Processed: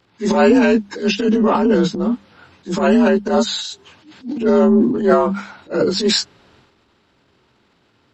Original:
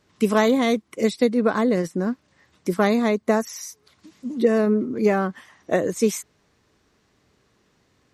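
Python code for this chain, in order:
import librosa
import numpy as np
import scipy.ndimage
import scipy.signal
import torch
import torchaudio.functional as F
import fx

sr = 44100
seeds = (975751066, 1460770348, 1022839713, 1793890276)

y = fx.partial_stretch(x, sr, pct=87)
y = fx.transient(y, sr, attack_db=-11, sustain_db=8)
y = fx.hum_notches(y, sr, base_hz=50, count=4)
y = y * 10.0 ** (8.0 / 20.0)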